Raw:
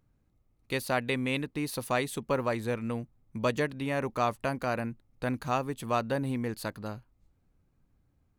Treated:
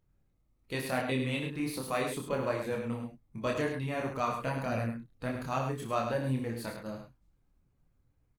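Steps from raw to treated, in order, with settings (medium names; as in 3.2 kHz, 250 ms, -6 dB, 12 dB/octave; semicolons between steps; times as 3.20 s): coarse spectral quantiser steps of 15 dB; chorus voices 4, 0.81 Hz, delay 27 ms, depth 4.3 ms; multi-tap echo 61/104 ms -9.5/-7.5 dB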